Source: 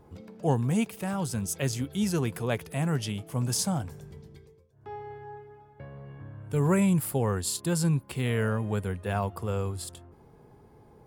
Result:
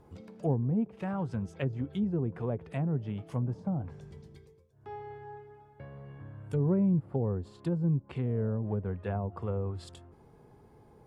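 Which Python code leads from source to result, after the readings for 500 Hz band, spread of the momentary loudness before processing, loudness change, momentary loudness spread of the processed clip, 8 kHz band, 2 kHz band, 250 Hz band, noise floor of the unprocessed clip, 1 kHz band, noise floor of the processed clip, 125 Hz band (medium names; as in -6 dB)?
-4.0 dB, 19 LU, -3.5 dB, 19 LU, under -25 dB, -12.5 dB, -2.5 dB, -56 dBFS, -7.5 dB, -59 dBFS, -2.5 dB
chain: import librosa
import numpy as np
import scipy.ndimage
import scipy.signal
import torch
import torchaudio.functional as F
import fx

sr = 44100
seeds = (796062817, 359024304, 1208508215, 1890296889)

y = fx.env_lowpass_down(x, sr, base_hz=530.0, full_db=-24.0)
y = y * 10.0 ** (-2.5 / 20.0)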